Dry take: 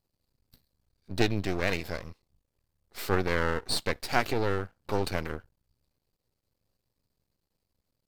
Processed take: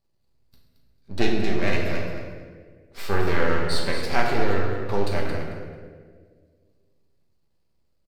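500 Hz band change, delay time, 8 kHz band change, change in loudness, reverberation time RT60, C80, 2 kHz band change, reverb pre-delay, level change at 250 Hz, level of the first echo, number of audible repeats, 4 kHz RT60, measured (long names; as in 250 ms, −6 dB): +5.0 dB, 222 ms, −0.5 dB, +4.0 dB, 1.7 s, 3.0 dB, +4.0 dB, 5 ms, +5.5 dB, −8.5 dB, 1, 1.1 s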